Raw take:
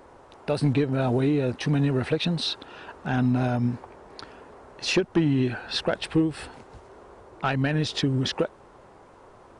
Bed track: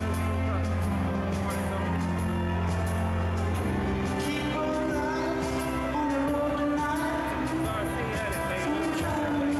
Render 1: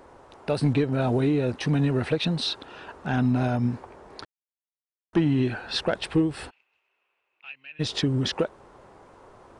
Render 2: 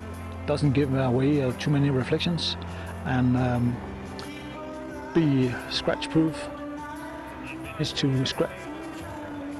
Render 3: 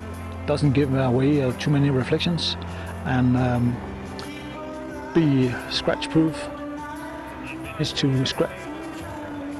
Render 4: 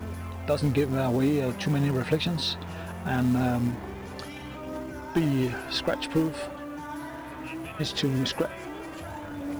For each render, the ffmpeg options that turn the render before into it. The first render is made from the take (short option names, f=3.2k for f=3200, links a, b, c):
-filter_complex "[0:a]asplit=3[a][b][c];[a]afade=t=out:st=6.49:d=0.02[d];[b]bandpass=f=2.6k:t=q:w=12,afade=t=in:st=6.49:d=0.02,afade=t=out:st=7.79:d=0.02[e];[c]afade=t=in:st=7.79:d=0.02[f];[d][e][f]amix=inputs=3:normalize=0,asplit=3[g][h][i];[g]atrim=end=4.25,asetpts=PTS-STARTPTS,afade=t=out:st=4.246:d=0.004:c=hsin[j];[h]atrim=start=4.25:end=5.13,asetpts=PTS-STARTPTS,volume=0[k];[i]atrim=start=5.13,asetpts=PTS-STARTPTS,afade=t=in:d=0.004:c=hsin[l];[j][k][l]concat=n=3:v=0:a=1"
-filter_complex "[1:a]volume=-8.5dB[a];[0:a][a]amix=inputs=2:normalize=0"
-af "volume=3dB"
-af "flanger=delay=0:depth=7.4:regen=60:speed=0.21:shape=triangular,acrusher=bits=6:mode=log:mix=0:aa=0.000001"